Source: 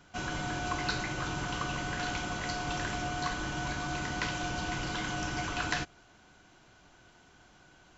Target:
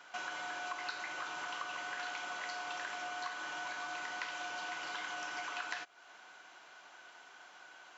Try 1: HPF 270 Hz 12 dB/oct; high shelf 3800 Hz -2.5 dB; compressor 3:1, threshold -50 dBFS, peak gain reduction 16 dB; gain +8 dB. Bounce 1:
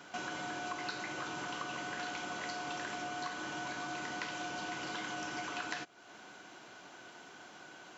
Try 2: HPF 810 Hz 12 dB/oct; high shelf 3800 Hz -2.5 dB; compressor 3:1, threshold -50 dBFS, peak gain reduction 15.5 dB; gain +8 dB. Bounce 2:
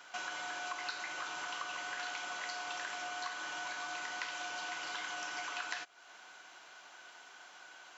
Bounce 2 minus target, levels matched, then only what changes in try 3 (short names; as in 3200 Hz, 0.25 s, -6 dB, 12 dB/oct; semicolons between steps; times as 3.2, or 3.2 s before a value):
8000 Hz band +3.5 dB
change: high shelf 3800 Hz -9 dB